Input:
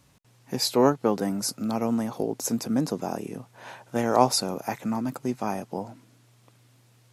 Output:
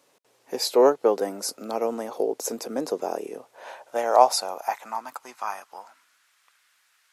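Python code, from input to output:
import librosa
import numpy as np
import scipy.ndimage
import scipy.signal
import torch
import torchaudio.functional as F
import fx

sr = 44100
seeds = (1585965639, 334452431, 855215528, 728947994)

y = fx.filter_sweep_highpass(x, sr, from_hz=450.0, to_hz=1500.0, start_s=3.27, end_s=6.26, q=2.2)
y = F.gain(torch.from_numpy(y), -1.0).numpy()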